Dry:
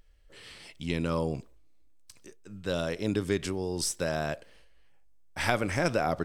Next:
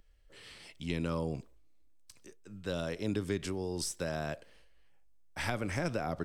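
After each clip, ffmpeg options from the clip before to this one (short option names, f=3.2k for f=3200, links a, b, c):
-filter_complex "[0:a]acrossover=split=280[a][b];[b]acompressor=threshold=-31dB:ratio=2.5[c];[a][c]amix=inputs=2:normalize=0,volume=-3.5dB"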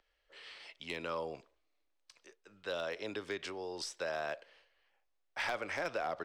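-filter_complex "[0:a]acrossover=split=440 5400:gain=0.0794 1 0.1[a][b][c];[a][b][c]amix=inputs=3:normalize=0,asoftclip=type=hard:threshold=-30.5dB,volume=2dB"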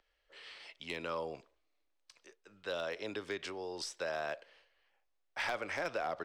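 -af anull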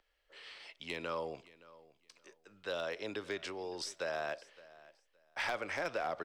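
-af "aecho=1:1:567|1134:0.0944|0.0198"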